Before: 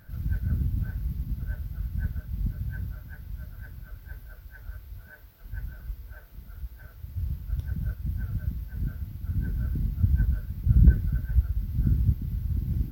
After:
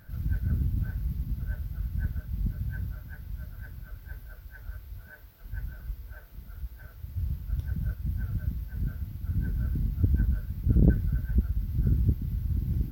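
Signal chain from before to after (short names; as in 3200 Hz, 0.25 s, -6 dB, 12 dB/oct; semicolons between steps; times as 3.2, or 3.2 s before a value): core saturation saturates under 190 Hz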